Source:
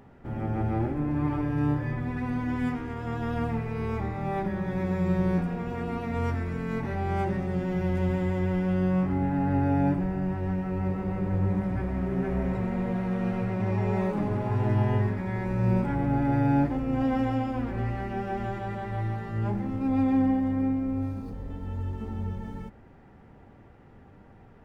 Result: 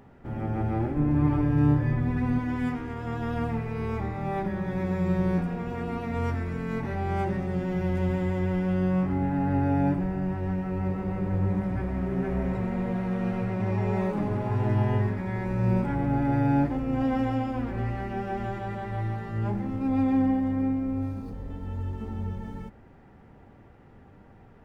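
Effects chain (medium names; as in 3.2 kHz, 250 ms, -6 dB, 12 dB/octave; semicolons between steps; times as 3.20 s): 0.96–2.39 s: bass shelf 320 Hz +6.5 dB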